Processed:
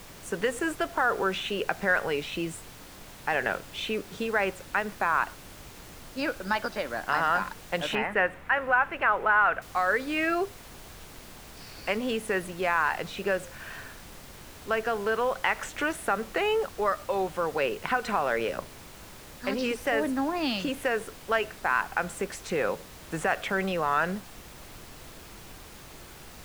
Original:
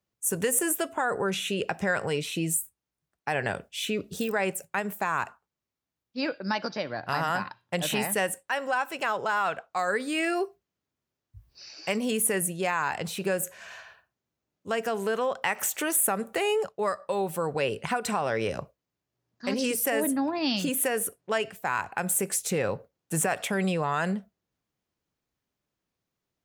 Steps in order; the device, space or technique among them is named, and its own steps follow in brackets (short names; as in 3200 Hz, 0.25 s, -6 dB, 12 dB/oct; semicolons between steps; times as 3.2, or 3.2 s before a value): horn gramophone (BPF 230–3900 Hz; bell 1400 Hz +5 dB; wow and flutter; pink noise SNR 16 dB); 7.95–9.62 resonant high shelf 3200 Hz -13 dB, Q 1.5